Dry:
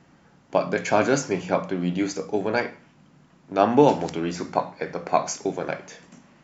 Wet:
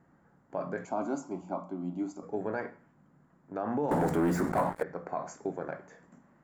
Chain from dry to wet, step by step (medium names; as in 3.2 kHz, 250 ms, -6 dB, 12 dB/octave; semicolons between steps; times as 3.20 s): 0.85–2.23 s: static phaser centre 470 Hz, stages 6; 3.91–4.83 s: waveshaping leveller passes 5; peak limiter -14 dBFS, peak gain reduction 10.5 dB; high-order bell 3.9 kHz -16 dB; trim -8 dB